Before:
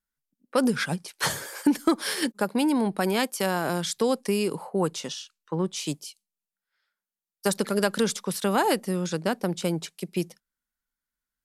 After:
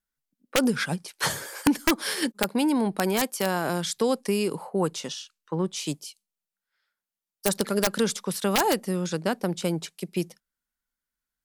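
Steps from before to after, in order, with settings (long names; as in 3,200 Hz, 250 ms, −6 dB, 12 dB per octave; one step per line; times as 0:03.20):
wrap-around overflow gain 11.5 dB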